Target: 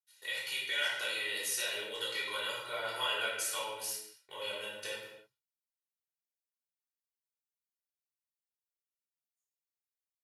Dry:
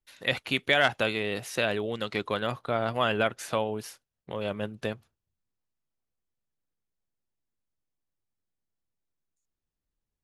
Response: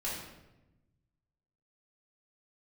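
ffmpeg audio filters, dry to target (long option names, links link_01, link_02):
-filter_complex "[0:a]agate=range=-16dB:threshold=-49dB:ratio=16:detection=peak,aderivative,aecho=1:1:2.1:0.73,asplit=2[link_01][link_02];[link_02]acompressor=threshold=-46dB:ratio=6,volume=1dB[link_03];[link_01][link_03]amix=inputs=2:normalize=0,alimiter=limit=-24dB:level=0:latency=1:release=116[link_04];[1:a]atrim=start_sample=2205,afade=type=out:start_time=0.39:duration=0.01,atrim=end_sample=17640[link_05];[link_04][link_05]afir=irnorm=-1:irlink=0"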